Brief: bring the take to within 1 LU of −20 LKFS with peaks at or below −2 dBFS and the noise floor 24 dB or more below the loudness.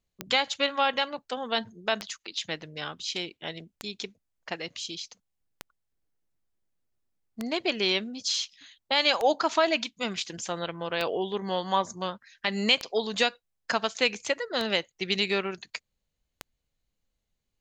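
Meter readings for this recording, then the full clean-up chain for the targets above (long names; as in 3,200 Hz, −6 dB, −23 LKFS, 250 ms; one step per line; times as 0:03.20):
number of clicks 10; integrated loudness −28.5 LKFS; sample peak −8.0 dBFS; target loudness −20.0 LKFS
→ click removal
level +8.5 dB
brickwall limiter −2 dBFS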